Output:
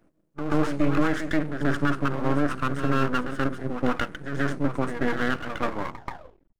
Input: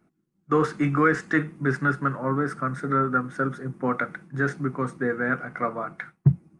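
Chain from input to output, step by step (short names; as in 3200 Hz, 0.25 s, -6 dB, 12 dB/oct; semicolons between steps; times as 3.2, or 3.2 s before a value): tape stop at the end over 0.90 s; bell 300 Hz +10 dB 0.29 oct; limiter -14 dBFS, peak gain reduction 8.5 dB; half-wave rectifier; reverse echo 0.132 s -8.5 dB; gain +3 dB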